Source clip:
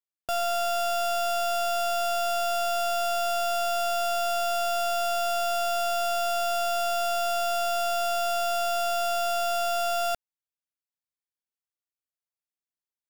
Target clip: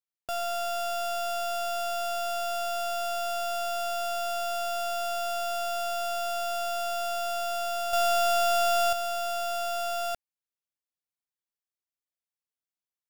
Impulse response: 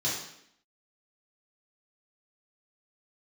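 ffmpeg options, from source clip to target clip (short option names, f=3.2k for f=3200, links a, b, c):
-filter_complex "[0:a]asettb=1/sr,asplit=3[a][b][c];[a]atrim=end=7.934[d];[b]atrim=start=7.93:end=8.93,asetpts=PTS-STARTPTS,afade=t=in:d=0.004:c=qsin,afade=t=out:st=0.996:d=0.004:c=qsin,acontrast=69[e];[c]atrim=start=8.926[f];[d][e]acrossfade=d=0.004:c1=hsin:c2=qsin[g];[g][f]acrossfade=d=0.004:c1=qsin:c2=hsin,volume=-4dB"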